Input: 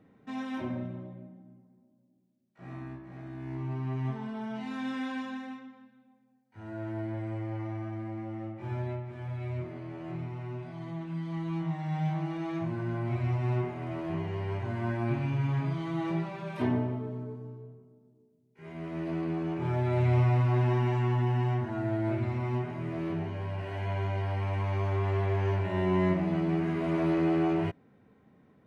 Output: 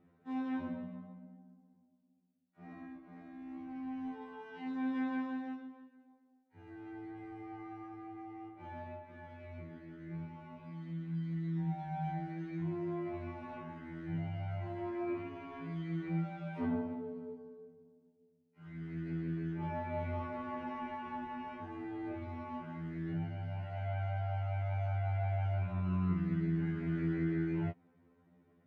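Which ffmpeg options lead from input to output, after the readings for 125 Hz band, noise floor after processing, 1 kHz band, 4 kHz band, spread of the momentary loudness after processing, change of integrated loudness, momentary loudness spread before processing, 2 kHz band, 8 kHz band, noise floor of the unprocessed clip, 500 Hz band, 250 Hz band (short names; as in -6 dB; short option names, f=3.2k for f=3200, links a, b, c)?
-9.0 dB, -70 dBFS, -6.0 dB, under -10 dB, 15 LU, -7.5 dB, 15 LU, -7.5 dB, n/a, -65 dBFS, -10.0 dB, -6.0 dB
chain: -filter_complex "[0:a]aemphasis=mode=reproduction:type=50kf,acrossover=split=2600[a][b];[b]acompressor=threshold=-59dB:ratio=4:attack=1:release=60[c];[a][c]amix=inputs=2:normalize=0,afftfilt=real='re*2*eq(mod(b,4),0)':imag='im*2*eq(mod(b,4),0)':win_size=2048:overlap=0.75,volume=-4dB"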